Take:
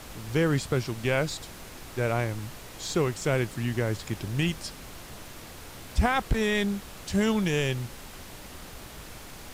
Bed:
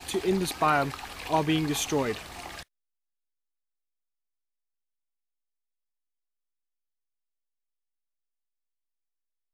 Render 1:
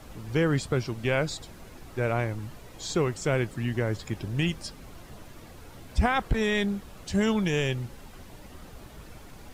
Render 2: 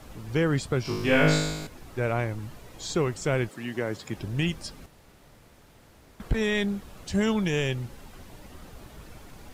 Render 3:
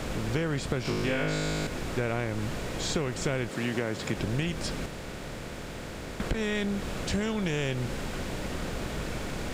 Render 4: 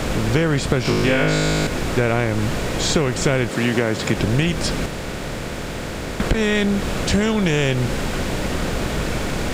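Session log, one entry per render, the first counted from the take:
noise reduction 9 dB, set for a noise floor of -44 dBFS
0.83–1.67 s: flutter echo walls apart 3.3 m, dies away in 1 s; 3.48–4.16 s: high-pass 310 Hz -> 120 Hz; 4.86–6.20 s: room tone
spectral levelling over time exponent 0.6; compression 10:1, threshold -25 dBFS, peak gain reduction 11.5 dB
trim +11 dB

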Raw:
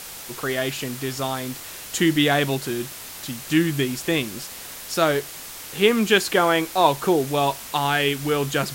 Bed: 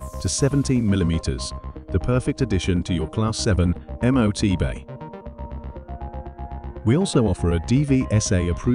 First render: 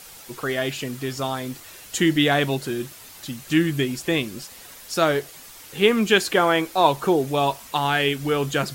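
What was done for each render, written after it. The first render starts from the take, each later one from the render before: noise reduction 8 dB, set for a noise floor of -38 dBFS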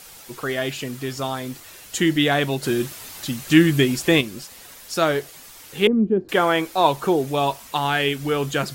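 2.63–4.21 s: gain +5.5 dB; 5.87–6.29 s: resonant low-pass 320 Hz, resonance Q 1.5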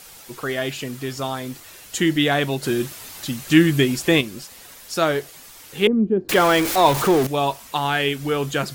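6.29–7.27 s: jump at every zero crossing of -19.5 dBFS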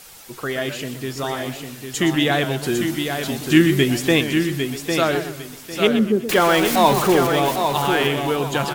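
on a send: feedback delay 802 ms, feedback 25%, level -6 dB; on the sum: modulated delay 125 ms, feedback 37%, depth 177 cents, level -10.5 dB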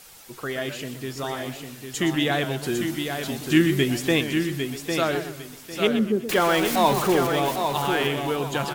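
trim -4.5 dB

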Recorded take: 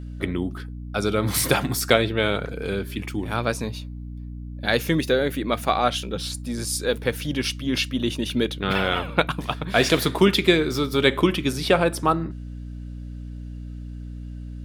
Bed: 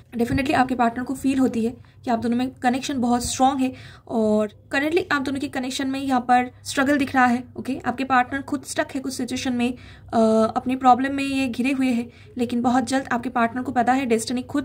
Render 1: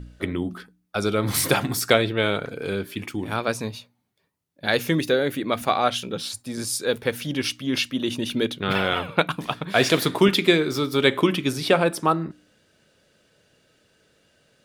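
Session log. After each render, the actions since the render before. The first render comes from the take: de-hum 60 Hz, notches 5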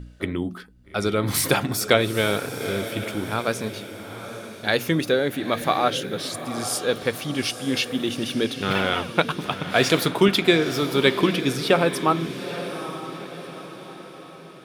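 echo that smears into a reverb 862 ms, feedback 48%, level -11 dB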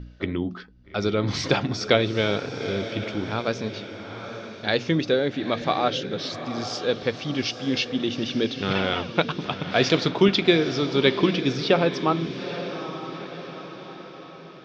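steep low-pass 5.9 kHz 48 dB/octave; dynamic bell 1.4 kHz, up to -4 dB, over -35 dBFS, Q 0.84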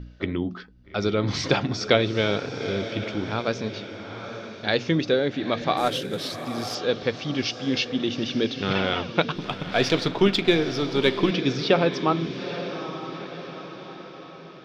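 5.77–6.75 s: CVSD coder 64 kbps; 9.35–11.31 s: partial rectifier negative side -3 dB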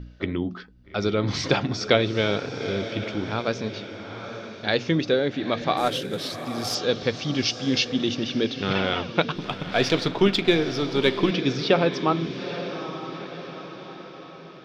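6.64–8.15 s: tone controls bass +3 dB, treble +7 dB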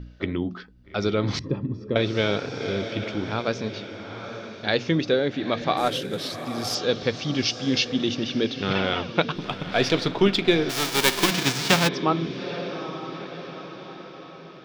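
1.39–1.96 s: boxcar filter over 60 samples; 10.69–11.87 s: formants flattened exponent 0.3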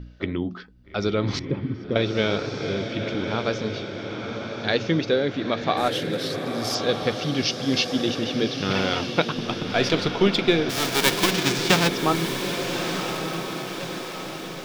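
echo that smears into a reverb 1208 ms, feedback 53%, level -7.5 dB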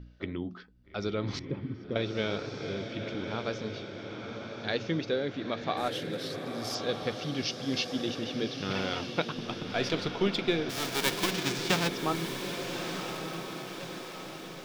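trim -8.5 dB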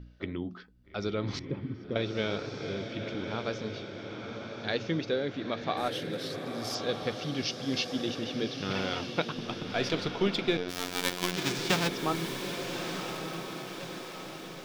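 5.46–6.16 s: band-stop 7.2 kHz; 10.57–11.37 s: robot voice 89.5 Hz

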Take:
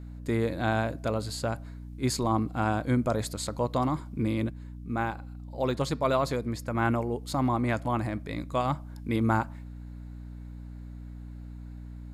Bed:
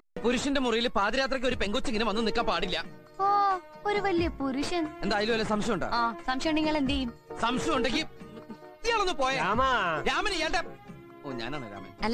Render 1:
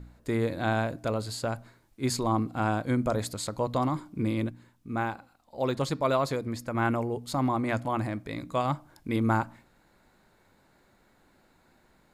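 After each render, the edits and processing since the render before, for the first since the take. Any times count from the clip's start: de-hum 60 Hz, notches 5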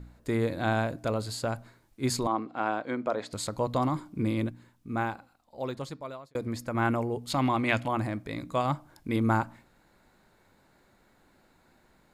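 2.27–3.33 s: band-pass 340–3500 Hz; 5.02–6.35 s: fade out; 7.30–7.88 s: peaking EQ 2.8 kHz +12.5 dB 1.1 oct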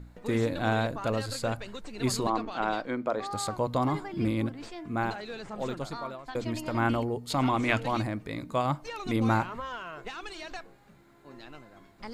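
add bed -12.5 dB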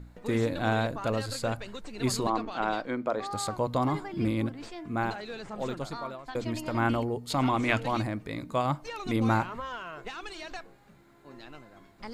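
no audible change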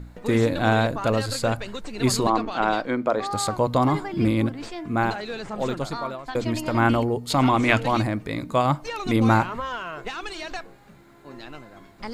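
trim +7 dB

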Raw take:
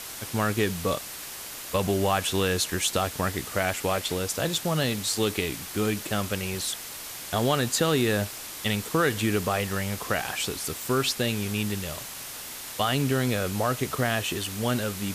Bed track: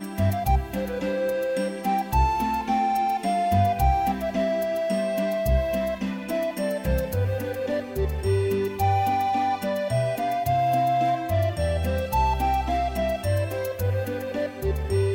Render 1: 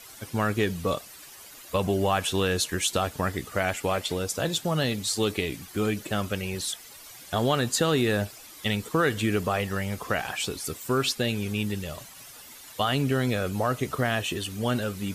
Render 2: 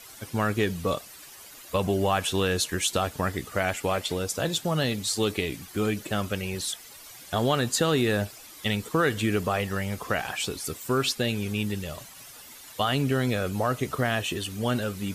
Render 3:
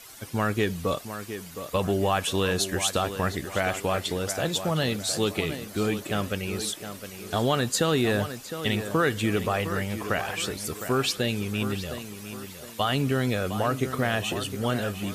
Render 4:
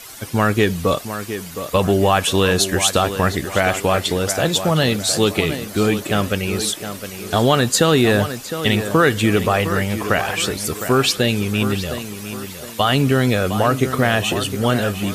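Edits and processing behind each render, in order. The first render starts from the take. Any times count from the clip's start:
noise reduction 12 dB, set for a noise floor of -39 dBFS
no audible change
tape echo 712 ms, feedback 42%, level -9 dB, low-pass 3 kHz
trim +9 dB; peak limiter -2 dBFS, peak gain reduction 1.5 dB

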